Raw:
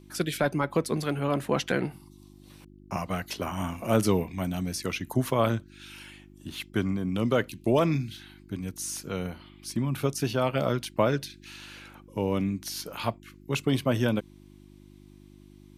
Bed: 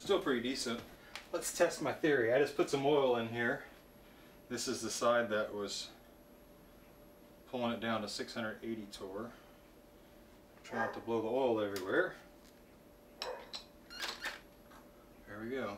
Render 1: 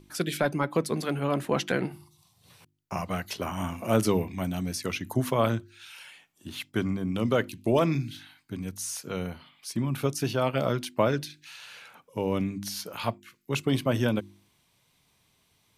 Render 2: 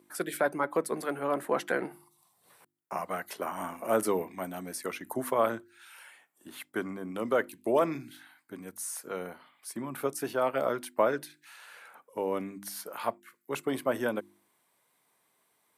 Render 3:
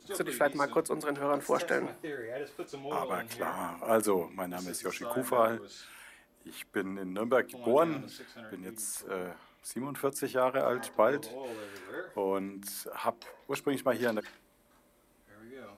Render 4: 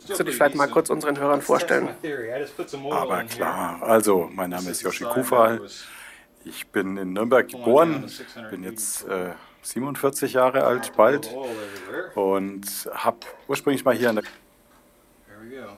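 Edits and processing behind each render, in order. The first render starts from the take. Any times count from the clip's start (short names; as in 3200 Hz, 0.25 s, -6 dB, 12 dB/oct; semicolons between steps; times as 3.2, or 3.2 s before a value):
de-hum 50 Hz, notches 7
HPF 370 Hz 12 dB/oct; band shelf 4000 Hz -10 dB
add bed -8.5 dB
gain +9.5 dB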